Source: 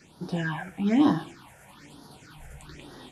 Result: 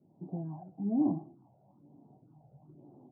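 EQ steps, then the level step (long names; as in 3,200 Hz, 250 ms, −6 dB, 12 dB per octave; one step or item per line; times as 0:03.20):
elliptic band-pass filter 110–740 Hz, stop band 40 dB
high-frequency loss of the air 360 metres
parametric band 480 Hz −7.5 dB 0.32 octaves
−6.5 dB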